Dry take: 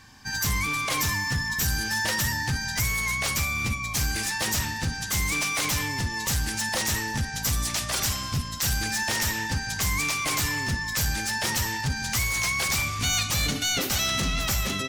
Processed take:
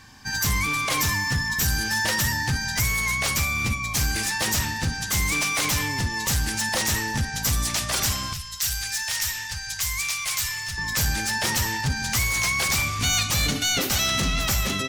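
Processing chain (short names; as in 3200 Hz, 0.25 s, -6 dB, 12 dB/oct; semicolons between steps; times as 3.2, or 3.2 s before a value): 8.33–10.78 passive tone stack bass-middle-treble 10-0-10; gain +2.5 dB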